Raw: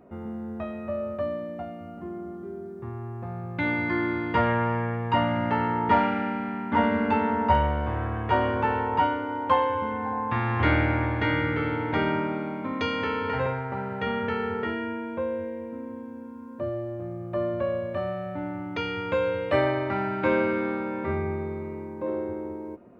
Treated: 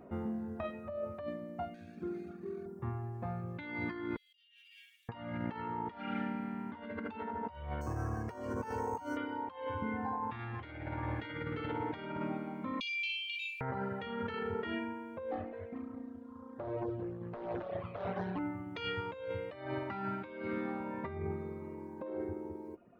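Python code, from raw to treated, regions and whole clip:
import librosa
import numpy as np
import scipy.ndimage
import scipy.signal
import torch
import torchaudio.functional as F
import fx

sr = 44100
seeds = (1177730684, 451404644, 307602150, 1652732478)

y = fx.chain(x, sr, fx.median_filter(points=41),
    fx.notch_comb(f0_hz=1000.0), at=(1.74, 2.66))
y = fx.chain(y, sr, fx.ellip_highpass(hz=3000.0, order=4, stop_db=70),
    fx.over_compress(threshold_db=-60.0, ratio=-1.0), at=(4.16, 5.09))
y = fx.chain(y, sr, fx.resample_bad(factor=6, down='filtered', up='hold'),
    fx.lowpass(hz=1300.0, slope=6), at=(7.81, 9.17))
y = fx.chain(y, sr, fx.brickwall_highpass(low_hz=2300.0),
    fx.room_flutter(wall_m=10.5, rt60_s=0.65),
    fx.env_flatten(amount_pct=70), at=(12.8, 13.61))
y = fx.chain(y, sr, fx.high_shelf(hz=3900.0, db=-9.0),
    fx.echo_feedback(ms=217, feedback_pct=26, wet_db=-5.5),
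    fx.doppler_dist(depth_ms=0.66), at=(15.31, 18.39))
y = fx.dereverb_blind(y, sr, rt60_s=1.7)
y = fx.dynamic_eq(y, sr, hz=3600.0, q=2.4, threshold_db=-54.0, ratio=4.0, max_db=6)
y = fx.over_compress(y, sr, threshold_db=-35.0, ratio=-1.0)
y = y * librosa.db_to_amplitude(-4.5)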